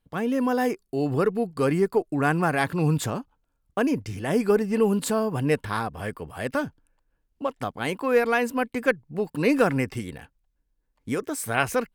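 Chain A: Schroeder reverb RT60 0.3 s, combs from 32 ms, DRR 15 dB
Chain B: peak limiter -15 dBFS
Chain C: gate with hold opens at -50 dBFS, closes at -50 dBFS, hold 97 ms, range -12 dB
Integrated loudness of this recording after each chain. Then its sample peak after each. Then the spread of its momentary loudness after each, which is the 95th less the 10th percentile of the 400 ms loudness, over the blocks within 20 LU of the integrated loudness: -25.0 LUFS, -27.0 LUFS, -25.5 LUFS; -5.5 dBFS, -15.0 dBFS, -5.5 dBFS; 10 LU, 10 LU, 10 LU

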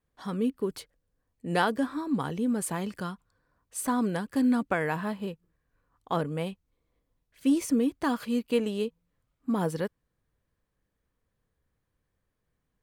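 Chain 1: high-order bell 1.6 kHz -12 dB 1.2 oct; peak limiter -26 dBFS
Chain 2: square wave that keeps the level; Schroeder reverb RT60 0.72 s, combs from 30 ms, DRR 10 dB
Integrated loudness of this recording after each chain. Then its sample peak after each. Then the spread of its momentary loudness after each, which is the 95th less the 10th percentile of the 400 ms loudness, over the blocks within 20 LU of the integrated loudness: -35.5 LUFS, -25.0 LUFS; -26.0 dBFS, -12.0 dBFS; 9 LU, 13 LU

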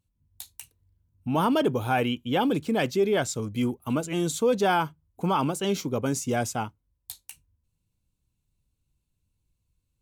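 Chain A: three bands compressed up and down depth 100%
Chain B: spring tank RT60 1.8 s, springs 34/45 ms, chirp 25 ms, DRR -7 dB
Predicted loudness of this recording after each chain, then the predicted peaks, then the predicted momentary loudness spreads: -26.5 LUFS, -18.5 LUFS; -11.5 dBFS, -2.5 dBFS; 13 LU, 8 LU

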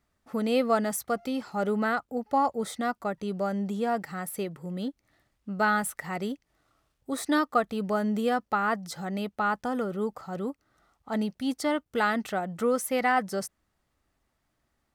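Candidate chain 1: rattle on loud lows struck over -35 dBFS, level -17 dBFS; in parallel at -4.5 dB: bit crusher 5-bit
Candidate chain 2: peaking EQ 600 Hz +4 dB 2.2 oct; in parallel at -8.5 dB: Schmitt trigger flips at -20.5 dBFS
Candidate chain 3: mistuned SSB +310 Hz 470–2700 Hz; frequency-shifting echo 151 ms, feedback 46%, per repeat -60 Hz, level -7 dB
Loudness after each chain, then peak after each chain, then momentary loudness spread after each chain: -24.5 LUFS, -26.0 LUFS, -29.5 LUFS; -7.0 dBFS, -7.5 dBFS, -10.5 dBFS; 9 LU, 11 LU, 16 LU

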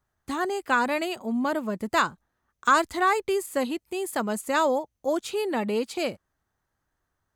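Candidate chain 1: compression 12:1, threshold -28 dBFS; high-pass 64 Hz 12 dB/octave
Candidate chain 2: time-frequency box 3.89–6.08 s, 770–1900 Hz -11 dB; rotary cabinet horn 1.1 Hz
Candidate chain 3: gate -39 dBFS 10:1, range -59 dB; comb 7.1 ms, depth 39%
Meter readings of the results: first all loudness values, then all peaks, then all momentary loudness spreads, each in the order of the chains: -33.0 LUFS, -29.5 LUFS, -26.0 LUFS; -14.5 dBFS, -11.0 dBFS, -8.0 dBFS; 4 LU, 7 LU, 8 LU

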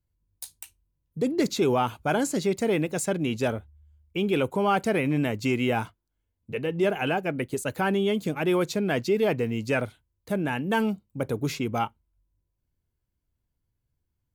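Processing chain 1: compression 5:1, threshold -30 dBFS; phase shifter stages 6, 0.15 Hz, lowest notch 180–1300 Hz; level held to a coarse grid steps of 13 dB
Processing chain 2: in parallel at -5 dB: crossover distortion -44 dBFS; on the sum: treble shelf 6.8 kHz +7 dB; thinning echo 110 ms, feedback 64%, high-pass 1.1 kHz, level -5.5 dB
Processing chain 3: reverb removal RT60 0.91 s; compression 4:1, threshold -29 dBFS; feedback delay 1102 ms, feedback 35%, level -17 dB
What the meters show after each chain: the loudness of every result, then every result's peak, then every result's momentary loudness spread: -42.0 LUFS, -22.5 LUFS, -33.5 LUFS; -26.5 dBFS, -7.5 dBFS, -18.0 dBFS; 8 LU, 12 LU, 17 LU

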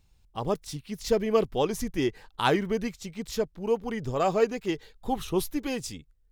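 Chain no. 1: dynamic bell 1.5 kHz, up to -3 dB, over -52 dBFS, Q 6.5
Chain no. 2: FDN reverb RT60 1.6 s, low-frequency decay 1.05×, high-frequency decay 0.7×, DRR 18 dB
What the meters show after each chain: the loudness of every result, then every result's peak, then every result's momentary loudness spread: -29.0 LUFS, -29.0 LUFS; -9.5 dBFS, -9.0 dBFS; 11 LU, 11 LU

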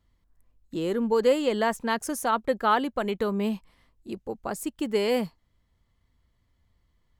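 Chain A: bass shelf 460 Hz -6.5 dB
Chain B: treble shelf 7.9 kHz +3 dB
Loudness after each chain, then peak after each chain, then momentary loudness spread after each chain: -29.0 LUFS, -26.5 LUFS; -12.5 dBFS, -10.5 dBFS; 16 LU, 14 LU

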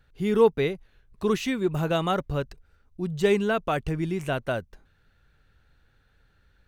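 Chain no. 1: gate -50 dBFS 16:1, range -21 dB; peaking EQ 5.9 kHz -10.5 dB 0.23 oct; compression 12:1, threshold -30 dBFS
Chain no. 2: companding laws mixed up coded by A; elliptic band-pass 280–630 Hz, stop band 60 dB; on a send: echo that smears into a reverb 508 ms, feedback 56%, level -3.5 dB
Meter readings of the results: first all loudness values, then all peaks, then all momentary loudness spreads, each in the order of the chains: -35.5 LUFS, -28.5 LUFS; -21.0 dBFS, -11.5 dBFS; 6 LU, 19 LU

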